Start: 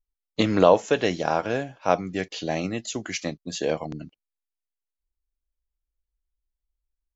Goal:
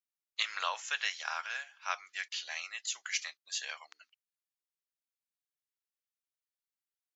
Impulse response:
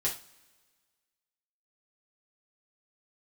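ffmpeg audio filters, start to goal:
-af "highpass=frequency=1300:width=0.5412,highpass=frequency=1300:width=1.3066,volume=-2.5dB"

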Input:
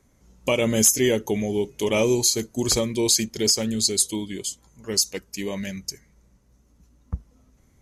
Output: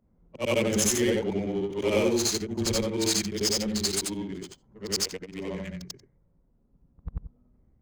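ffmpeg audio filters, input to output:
ffmpeg -i in.wav -af "afftfilt=real='re':imag='-im':win_size=8192:overlap=0.75,adynamicsmooth=sensitivity=7:basefreq=890,afreqshift=-14,volume=1dB" out.wav

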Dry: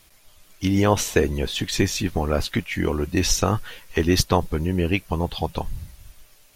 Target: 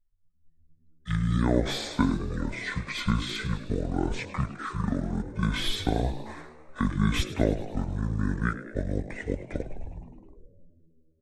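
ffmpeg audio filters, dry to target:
ffmpeg -i in.wav -filter_complex "[0:a]bandreject=frequency=4800:width=5.7,anlmdn=0.158,acrossover=split=110|3700[link_01][link_02][link_03];[link_03]asoftclip=type=hard:threshold=-24.5dB[link_04];[link_01][link_02][link_04]amix=inputs=3:normalize=0,asetrate=25754,aresample=44100,asplit=8[link_05][link_06][link_07][link_08][link_09][link_10][link_11][link_12];[link_06]adelay=104,afreqshift=78,volume=-14dB[link_13];[link_07]adelay=208,afreqshift=156,volume=-18dB[link_14];[link_08]adelay=312,afreqshift=234,volume=-22dB[link_15];[link_09]adelay=416,afreqshift=312,volume=-26dB[link_16];[link_10]adelay=520,afreqshift=390,volume=-30.1dB[link_17];[link_11]adelay=624,afreqshift=468,volume=-34.1dB[link_18];[link_12]adelay=728,afreqshift=546,volume=-38.1dB[link_19];[link_05][link_13][link_14][link_15][link_16][link_17][link_18][link_19]amix=inputs=8:normalize=0,volume=-6dB" out.wav

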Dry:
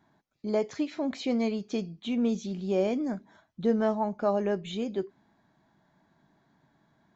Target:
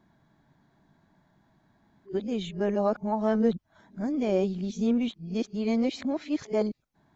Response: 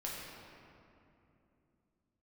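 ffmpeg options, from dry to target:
-af "areverse,lowshelf=frequency=110:gain=10.5"

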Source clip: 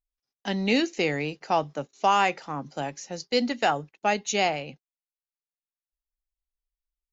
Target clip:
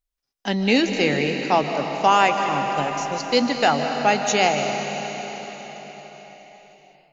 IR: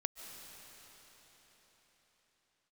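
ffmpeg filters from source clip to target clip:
-filter_complex "[1:a]atrim=start_sample=2205[link_01];[0:a][link_01]afir=irnorm=-1:irlink=0,volume=6.5dB"

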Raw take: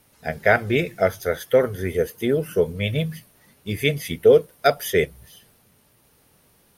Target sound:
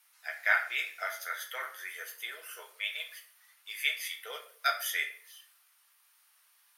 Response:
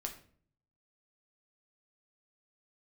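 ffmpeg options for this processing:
-filter_complex "[0:a]highpass=frequency=1100:width=0.5412,highpass=frequency=1100:width=1.3066[link_01];[1:a]atrim=start_sample=2205,afade=type=out:start_time=0.37:duration=0.01,atrim=end_sample=16758[link_02];[link_01][link_02]afir=irnorm=-1:irlink=0,volume=-3dB"

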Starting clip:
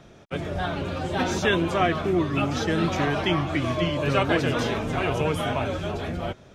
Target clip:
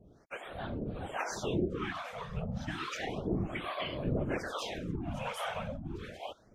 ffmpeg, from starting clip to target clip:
ffmpeg -i in.wav -filter_complex "[0:a]afftfilt=real='hypot(re,im)*cos(2*PI*random(0))':imag='hypot(re,im)*sin(2*PI*random(1))':win_size=512:overlap=0.75,acrossover=split=560[link_01][link_02];[link_01]aeval=exprs='val(0)*(1-1/2+1/2*cos(2*PI*1.2*n/s))':channel_layout=same[link_03];[link_02]aeval=exprs='val(0)*(1-1/2-1/2*cos(2*PI*1.2*n/s))':channel_layout=same[link_04];[link_03][link_04]amix=inputs=2:normalize=0,afftfilt=real='re*(1-between(b*sr/1024,290*pow(7200/290,0.5+0.5*sin(2*PI*0.32*pts/sr))/1.41,290*pow(7200/290,0.5+0.5*sin(2*PI*0.32*pts/sr))*1.41))':imag='im*(1-between(b*sr/1024,290*pow(7200/290,0.5+0.5*sin(2*PI*0.32*pts/sr))/1.41,290*pow(7200/290,0.5+0.5*sin(2*PI*0.32*pts/sr))*1.41))':win_size=1024:overlap=0.75" out.wav

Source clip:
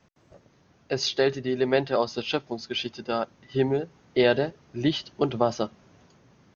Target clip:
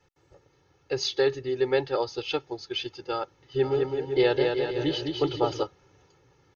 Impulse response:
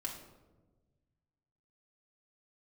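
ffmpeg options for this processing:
-filter_complex "[0:a]aecho=1:1:2.3:0.98,asplit=3[link_01][link_02][link_03];[link_01]afade=type=out:start_time=3.62:duration=0.02[link_04];[link_02]aecho=1:1:210|378|512.4|619.9|705.9:0.631|0.398|0.251|0.158|0.1,afade=type=in:start_time=3.62:duration=0.02,afade=type=out:start_time=5.62:duration=0.02[link_05];[link_03]afade=type=in:start_time=5.62:duration=0.02[link_06];[link_04][link_05][link_06]amix=inputs=3:normalize=0,volume=-5.5dB"

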